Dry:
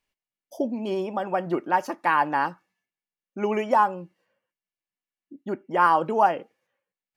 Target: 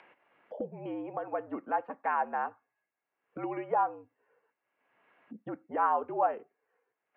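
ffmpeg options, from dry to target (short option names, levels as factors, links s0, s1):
-filter_complex "[0:a]acrossover=split=360 2000:gain=0.0794 1 0.158[s0][s1][s2];[s0][s1][s2]amix=inputs=3:normalize=0,highpass=f=170:t=q:w=0.5412,highpass=f=170:t=q:w=1.307,lowpass=f=3000:t=q:w=0.5176,lowpass=f=3000:t=q:w=0.7071,lowpass=f=3000:t=q:w=1.932,afreqshift=-66,acompressor=mode=upward:threshold=0.0562:ratio=2.5,volume=0.422"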